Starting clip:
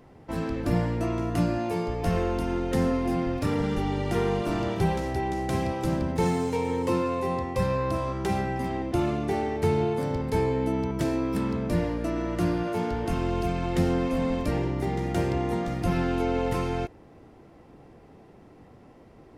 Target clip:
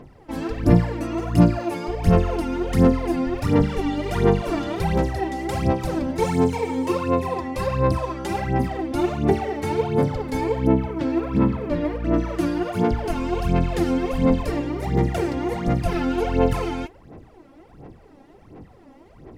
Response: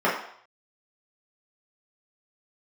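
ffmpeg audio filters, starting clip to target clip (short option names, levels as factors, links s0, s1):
-filter_complex "[0:a]asettb=1/sr,asplit=3[s0][s1][s2];[s0]atrim=end=10.674[s3];[s1]atrim=start=10.67:end=12.14,asetpts=PTS-STARTPTS,afade=t=in:d=0.004:c=qsin,afade=t=out:st=1.466:d=0.004:c=qsin,lowpass=3100[s4];[s2]atrim=start=12.136[s5];[s3][s4]acrossfade=d=0.004:c1=hsin:c2=qsin[s6];[s6][s5]acrossfade=d=0.004:c1=qsin:c2=hsin,aphaser=in_gain=1:out_gain=1:delay=3.7:decay=0.72:speed=1.4:type=sinusoidal"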